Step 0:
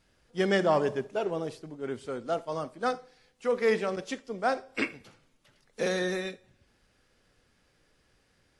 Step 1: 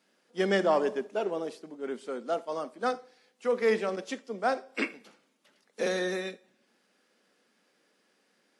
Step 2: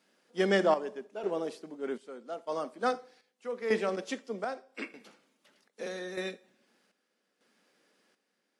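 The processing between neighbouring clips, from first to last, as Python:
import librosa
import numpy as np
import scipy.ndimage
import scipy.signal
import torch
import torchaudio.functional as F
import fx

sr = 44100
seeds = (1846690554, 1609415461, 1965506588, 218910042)

y1 = scipy.signal.sosfilt(scipy.signal.cheby1(4, 1.0, 200.0, 'highpass', fs=sr, output='sos'), x)
y2 = fx.chopper(y1, sr, hz=0.81, depth_pct=65, duty_pct=60)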